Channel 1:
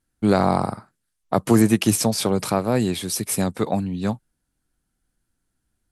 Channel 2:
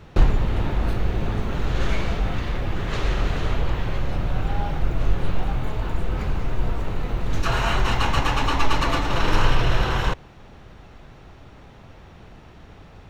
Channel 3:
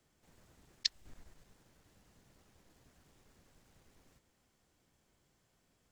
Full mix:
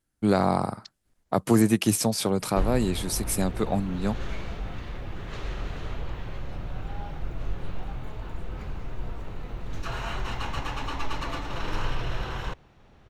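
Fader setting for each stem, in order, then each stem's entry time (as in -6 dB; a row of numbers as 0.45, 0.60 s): -4.0, -10.5, -15.0 dB; 0.00, 2.40, 0.00 s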